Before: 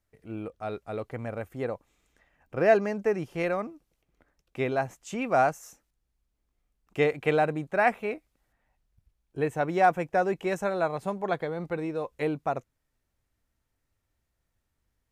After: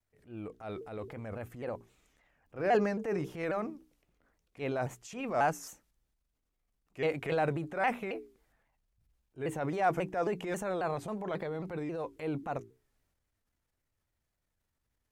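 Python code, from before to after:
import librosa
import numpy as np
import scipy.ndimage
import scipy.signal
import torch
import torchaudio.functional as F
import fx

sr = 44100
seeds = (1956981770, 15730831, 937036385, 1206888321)

y = fx.hum_notches(x, sr, base_hz=60, count=7)
y = fx.transient(y, sr, attack_db=-8, sustain_db=6)
y = fx.vibrato_shape(y, sr, shape='saw_down', rate_hz=3.7, depth_cents=160.0)
y = F.gain(torch.from_numpy(y), -4.5).numpy()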